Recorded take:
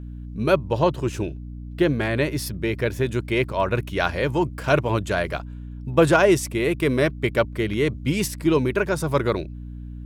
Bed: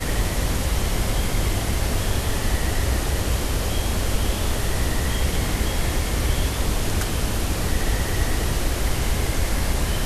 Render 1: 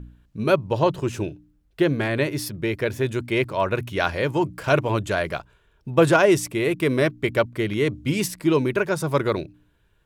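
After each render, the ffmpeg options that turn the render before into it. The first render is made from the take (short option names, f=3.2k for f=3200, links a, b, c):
-af "bandreject=f=60:t=h:w=4,bandreject=f=120:t=h:w=4,bandreject=f=180:t=h:w=4,bandreject=f=240:t=h:w=4,bandreject=f=300:t=h:w=4"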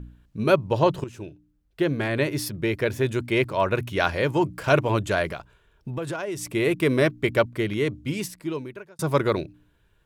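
-filter_complex "[0:a]asettb=1/sr,asplit=3[a][b][c];[a]atrim=end=5.324[d];[b]atrim=start=5.32:end=6.53,asetpts=PTS-STARTPTS,afade=t=in:d=0.004:c=qsin,afade=t=out:st=1.206:d=0.004:c=qsin,acompressor=threshold=-28dB:ratio=6:attack=3.2:release=140:knee=1:detection=peak[e];[c]atrim=start=6.526[f];[d][e]acrossfade=d=0.004:c1=hsin:c2=qsin[g];[g][f]acrossfade=d=0.004:c1=qsin:c2=hsin,asplit=3[h][i][j];[h]atrim=end=1.04,asetpts=PTS-STARTPTS,afade=t=out:st=1.036:d=0.004:c=hsin:silence=0.211349[k];[i]atrim=start=1.04:end=8.99,asetpts=PTS-STARTPTS,afade=t=in:d=1.37:silence=0.211349,afade=t=out:st=6.39:d=1.56[l];[j]atrim=start=8.99,asetpts=PTS-STARTPTS,afade=t=in:d=0.004:c=hsin[m];[k][l][m]concat=n=3:v=0:a=1"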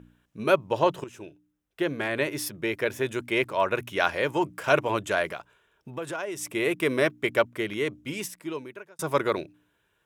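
-af "highpass=f=450:p=1,equalizer=f=4.4k:w=4.8:g=-7.5"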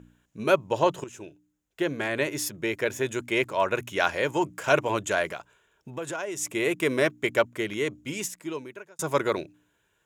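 -af "equalizer=f=6.9k:w=4.4:g=10.5,bandreject=f=1.2k:w=20"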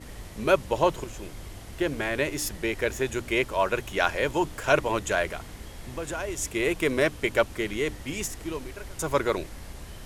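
-filter_complex "[1:a]volume=-19dB[a];[0:a][a]amix=inputs=2:normalize=0"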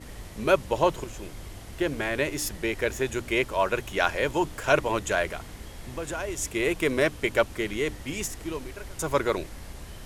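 -af anull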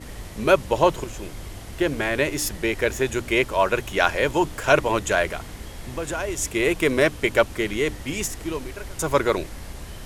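-af "volume=4.5dB,alimiter=limit=-2dB:level=0:latency=1"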